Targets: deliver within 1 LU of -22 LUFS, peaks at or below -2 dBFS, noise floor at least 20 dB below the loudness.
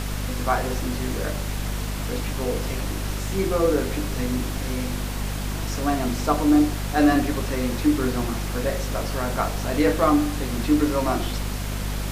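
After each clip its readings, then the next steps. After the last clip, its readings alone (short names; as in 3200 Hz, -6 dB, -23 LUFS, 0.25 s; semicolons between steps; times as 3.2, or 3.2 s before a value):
hum 50 Hz; harmonics up to 250 Hz; hum level -26 dBFS; noise floor -28 dBFS; noise floor target -45 dBFS; loudness -24.5 LUFS; peak -6.5 dBFS; loudness target -22.0 LUFS
-> notches 50/100/150/200/250 Hz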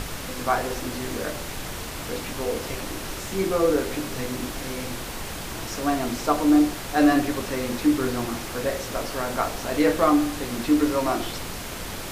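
hum none; noise floor -34 dBFS; noise floor target -46 dBFS
-> noise print and reduce 12 dB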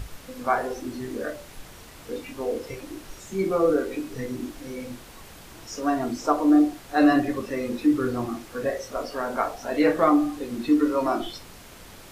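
noise floor -46 dBFS; loudness -25.0 LUFS; peak -7.0 dBFS; loudness target -22.0 LUFS
-> gain +3 dB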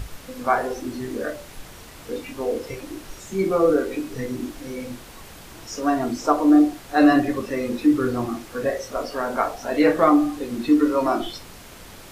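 loudness -22.0 LUFS; peak -4.0 dBFS; noise floor -43 dBFS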